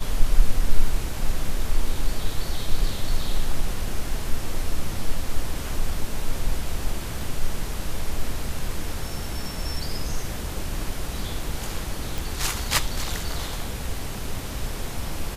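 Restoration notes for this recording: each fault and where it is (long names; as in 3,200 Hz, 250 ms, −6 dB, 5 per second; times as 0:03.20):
0:12.18: click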